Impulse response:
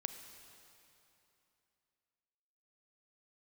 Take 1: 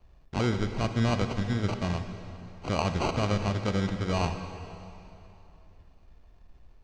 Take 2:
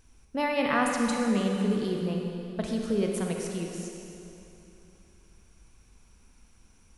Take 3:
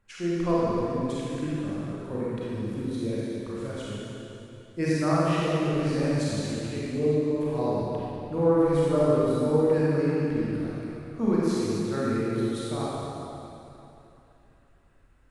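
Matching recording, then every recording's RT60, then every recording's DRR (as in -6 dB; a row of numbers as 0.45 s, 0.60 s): 1; 3.0 s, 3.0 s, 3.0 s; 7.5 dB, 0.5 dB, -8.5 dB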